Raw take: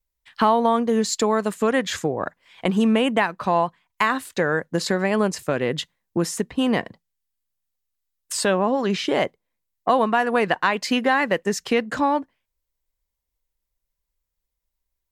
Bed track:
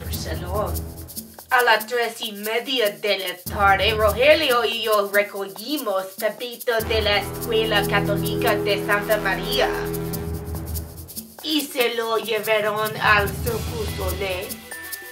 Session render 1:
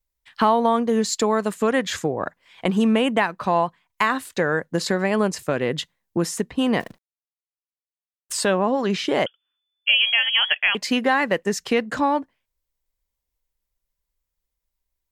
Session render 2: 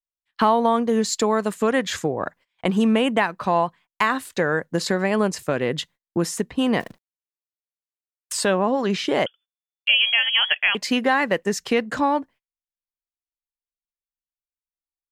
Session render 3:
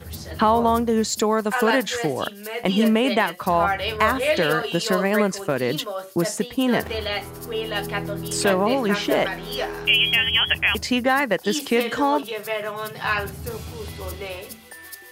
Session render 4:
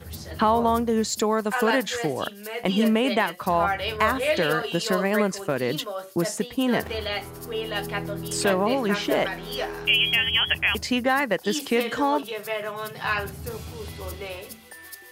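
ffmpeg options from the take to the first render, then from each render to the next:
-filter_complex "[0:a]asettb=1/sr,asplit=3[s0][s1][s2];[s0]atrim=end=6.804[s3];[s1]atrim=start=6.8:end=8.34,asetpts=PTS-STARTPTS,afade=t=in:d=0.004:c=qsin,afade=t=out:st=1.536:d=0.004:c=qsin,acrusher=bits=8:dc=4:mix=0:aa=0.000001[s4];[s2]atrim=start=8.336[s5];[s3][s4]acrossfade=d=0.004:c1=hsin:c2=qsin[s6];[s6][s5]acrossfade=d=0.004:c1=qsin:c2=hsin,asettb=1/sr,asplit=3[s7][s8][s9];[s7]atrim=end=9.264[s10];[s8]atrim=start=9.26:end=10.75,asetpts=PTS-STARTPTS,afade=t=in:d=0.004:c=qsin,afade=t=out:st=1.486:d=0.004:c=qsin,lowpass=f=3000:t=q:w=0.5098,lowpass=f=3000:t=q:w=0.6013,lowpass=f=3000:t=q:w=0.9,lowpass=f=3000:t=q:w=2.563,afreqshift=-3500[s11];[s9]atrim=start=10.746[s12];[s10][s11]acrossfade=d=0.004:c1=hsin:c2=qsin[s13];[s13][s12]acrossfade=d=0.004:c1=qsin:c2=hsin"
-af "agate=range=0.0447:threshold=0.00562:ratio=16:detection=peak"
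-filter_complex "[1:a]volume=0.447[s0];[0:a][s0]amix=inputs=2:normalize=0"
-af "volume=0.75"

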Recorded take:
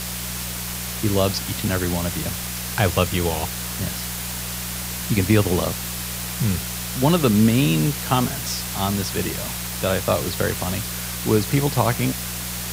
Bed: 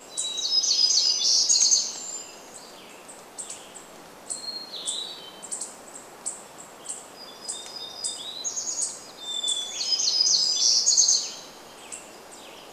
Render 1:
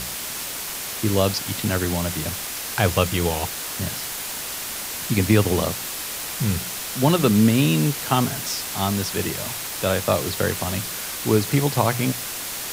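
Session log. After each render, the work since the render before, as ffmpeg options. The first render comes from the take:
-af "bandreject=f=60:t=h:w=4,bandreject=f=120:t=h:w=4,bandreject=f=180:t=h:w=4"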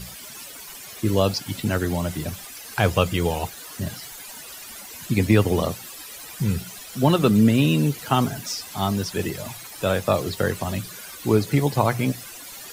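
-af "afftdn=nr=14:nf=-31"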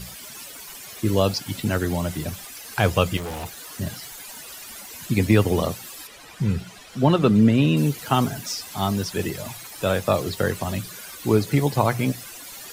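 -filter_complex "[0:a]asettb=1/sr,asplit=3[s0][s1][s2];[s0]atrim=end=3.174[s3];[s1]atrim=start=3.17:end=3.77,asetpts=PTS-STARTPTS,afade=t=in:d=0.004:c=qsin,afade=t=out:st=0.596:d=0.004:c=qsin,asoftclip=type=hard:threshold=0.0355[s4];[s2]atrim=start=3.766[s5];[s3][s4]acrossfade=d=0.004:c1=hsin:c2=qsin[s6];[s6][s5]acrossfade=d=0.004:c1=qsin:c2=hsin,asettb=1/sr,asplit=3[s7][s8][s9];[s7]atrim=end=6.074[s10];[s8]atrim=start=6.07:end=7.77,asetpts=PTS-STARTPTS,afade=t=in:d=0.004:c=qsin,afade=t=out:st=1.696:d=0.004:c=qsin,aemphasis=mode=reproduction:type=50fm[s11];[s9]atrim=start=7.766[s12];[s10][s11]acrossfade=d=0.004:c1=hsin:c2=qsin[s13];[s13][s12]acrossfade=d=0.004:c1=qsin:c2=hsin"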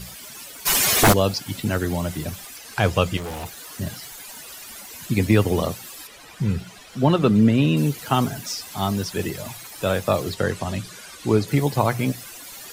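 -filter_complex "[0:a]asplit=3[s0][s1][s2];[s0]afade=t=out:st=0.65:d=0.02[s3];[s1]aeval=exprs='0.355*sin(PI/2*7.08*val(0)/0.355)':c=same,afade=t=in:st=0.65:d=0.02,afade=t=out:st=1.12:d=0.02[s4];[s2]afade=t=in:st=1.12:d=0.02[s5];[s3][s4][s5]amix=inputs=3:normalize=0,asettb=1/sr,asplit=3[s6][s7][s8];[s6]atrim=end=2.574[s9];[s7]atrim=start=2.57:end=3.24,asetpts=PTS-STARTPTS,afade=t=in:d=0.004:c=qsin,afade=t=out:st=0.666:d=0.004:c=qsin,acrossover=split=9300[s10][s11];[s11]acompressor=threshold=0.00501:ratio=4:attack=1:release=60[s12];[s10][s12]amix=inputs=2:normalize=0[s13];[s8]atrim=start=3.236[s14];[s9][s13]acrossfade=d=0.004:c1=hsin:c2=qsin[s15];[s15][s14]acrossfade=d=0.004:c1=qsin:c2=hsin,asettb=1/sr,asplit=3[s16][s17][s18];[s16]atrim=end=10.344[s19];[s17]atrim=start=10.34:end=11.48,asetpts=PTS-STARTPTS,afade=t=in:d=0.004:c=qsin,afade=t=out:st=1.136:d=0.004:c=qsin,lowpass=9200[s20];[s18]atrim=start=11.476[s21];[s19][s20]acrossfade=d=0.004:c1=hsin:c2=qsin[s22];[s22][s21]acrossfade=d=0.004:c1=qsin:c2=hsin"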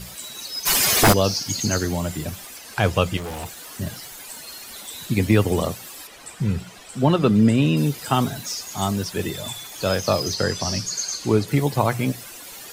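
-filter_complex "[1:a]volume=0.376[s0];[0:a][s0]amix=inputs=2:normalize=0"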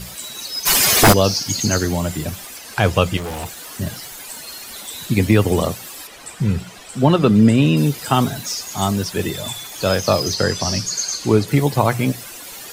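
-af "volume=1.58,alimiter=limit=0.794:level=0:latency=1"

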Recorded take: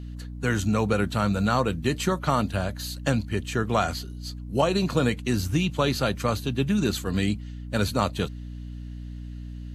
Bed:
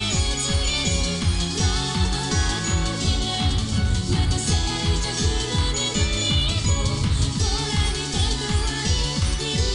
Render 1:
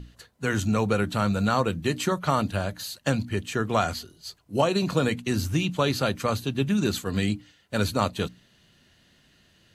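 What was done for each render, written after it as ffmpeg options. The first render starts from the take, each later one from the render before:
-af "bandreject=f=60:t=h:w=6,bandreject=f=120:t=h:w=6,bandreject=f=180:t=h:w=6,bandreject=f=240:t=h:w=6,bandreject=f=300:t=h:w=6"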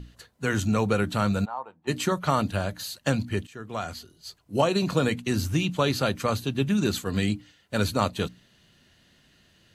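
-filter_complex "[0:a]asplit=3[s0][s1][s2];[s0]afade=t=out:st=1.44:d=0.02[s3];[s1]bandpass=f=870:t=q:w=7,afade=t=in:st=1.44:d=0.02,afade=t=out:st=1.87:d=0.02[s4];[s2]afade=t=in:st=1.87:d=0.02[s5];[s3][s4][s5]amix=inputs=3:normalize=0,asplit=2[s6][s7];[s6]atrim=end=3.47,asetpts=PTS-STARTPTS,afade=t=out:st=3.466:d=0.004:c=hsin:silence=0.11885[s8];[s7]atrim=start=3.47,asetpts=PTS-STARTPTS,afade=t=in:d=1.09:silence=0.11885[s9];[s8][s9]concat=n=2:v=0:a=1"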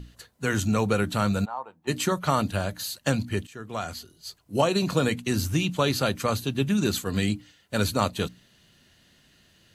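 -af "highshelf=f=6500:g=5.5"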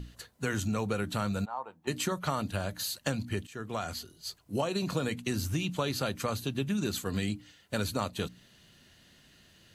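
-af "acompressor=threshold=0.0282:ratio=2.5"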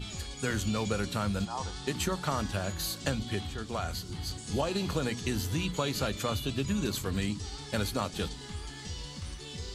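-filter_complex "[1:a]volume=0.126[s0];[0:a][s0]amix=inputs=2:normalize=0"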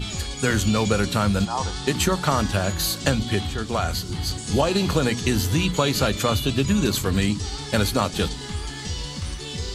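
-af "volume=3.16"

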